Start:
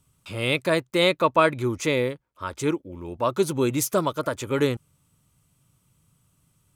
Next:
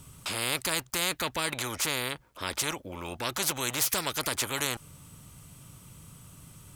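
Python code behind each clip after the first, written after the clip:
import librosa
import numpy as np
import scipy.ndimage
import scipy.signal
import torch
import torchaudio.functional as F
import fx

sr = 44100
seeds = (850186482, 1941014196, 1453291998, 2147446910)

y = fx.spectral_comp(x, sr, ratio=4.0)
y = F.gain(torch.from_numpy(y), -6.0).numpy()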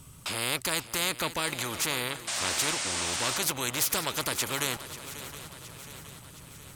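y = fx.echo_swing(x, sr, ms=719, ratio=3, feedback_pct=56, wet_db=-14.0)
y = fx.spec_paint(y, sr, seeds[0], shape='noise', start_s=2.27, length_s=1.11, low_hz=550.0, high_hz=9500.0, level_db=-32.0)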